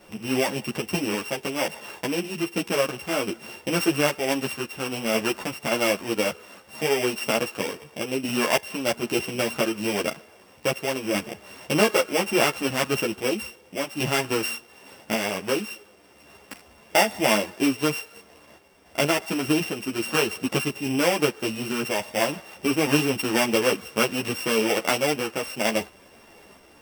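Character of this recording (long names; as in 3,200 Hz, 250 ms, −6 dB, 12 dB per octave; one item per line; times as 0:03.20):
a buzz of ramps at a fixed pitch in blocks of 16 samples
sample-and-hold tremolo
a shimmering, thickened sound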